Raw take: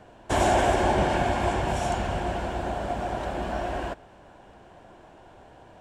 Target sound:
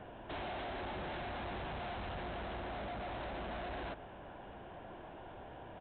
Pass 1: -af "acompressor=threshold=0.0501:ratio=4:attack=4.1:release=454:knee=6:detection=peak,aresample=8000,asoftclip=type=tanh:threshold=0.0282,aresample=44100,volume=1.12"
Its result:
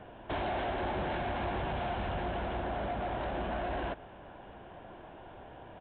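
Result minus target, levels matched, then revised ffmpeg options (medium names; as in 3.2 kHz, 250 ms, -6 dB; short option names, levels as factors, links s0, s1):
saturation: distortion -6 dB
-af "acompressor=threshold=0.0501:ratio=4:attack=4.1:release=454:knee=6:detection=peak,aresample=8000,asoftclip=type=tanh:threshold=0.00841,aresample=44100,volume=1.12"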